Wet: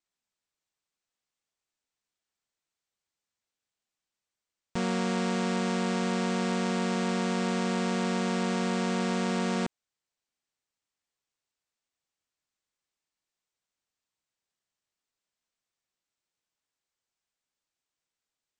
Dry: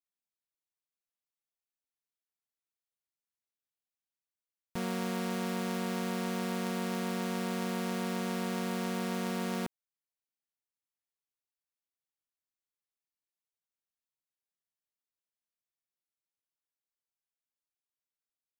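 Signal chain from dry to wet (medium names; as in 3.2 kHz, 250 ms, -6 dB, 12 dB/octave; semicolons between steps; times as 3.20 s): steep low-pass 8.6 kHz 72 dB/octave; in parallel at +1.5 dB: peak limiter -30.5 dBFS, peak gain reduction 7 dB; on the sum: trim +1 dB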